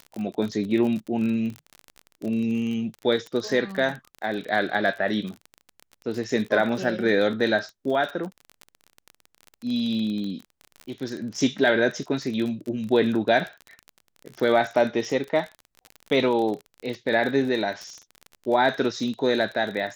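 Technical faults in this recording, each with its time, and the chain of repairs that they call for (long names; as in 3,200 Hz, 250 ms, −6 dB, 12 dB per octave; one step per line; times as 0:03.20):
surface crackle 36 per second −30 dBFS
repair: click removal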